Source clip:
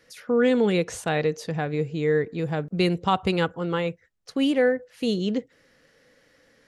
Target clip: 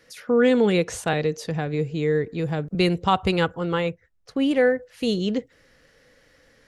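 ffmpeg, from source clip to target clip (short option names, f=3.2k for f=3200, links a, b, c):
-filter_complex "[0:a]asubboost=boost=2.5:cutoff=110,asettb=1/sr,asplit=3[a][b][c];[a]atrim=end=1.134[d];[b]atrim=start=1.13:end=2.75,asetpts=PTS-STARTPTS,afade=t=in:d=0.004:c=qsin,afade=t=out:st=1.616:d=0.004:c=qsin,acrossover=split=460|3000[e][f][g];[f]acompressor=threshold=-35dB:ratio=2[h];[e][h][g]amix=inputs=3:normalize=0[i];[c]atrim=start=2.746[j];[d][i]acrossfade=d=0.004:c1=hsin:c2=qsin[k];[k][j]acrossfade=d=0.004:c1=qsin:c2=hsin,asettb=1/sr,asplit=3[l][m][n];[l]atrim=end=3.904[o];[m]atrim=start=3.9:end=4.51,asetpts=PTS-STARTPTS,afade=t=in:d=0.004:c=qsin,afade=t=out:st=0.606:d=0.004:c=qsin,highshelf=f=2.4k:g=-9[p];[n]atrim=start=4.506[q];[o][p]acrossfade=d=0.004:c1=hsin:c2=qsin[r];[r][q]acrossfade=d=0.004:c1=qsin:c2=hsin,volume=2.5dB"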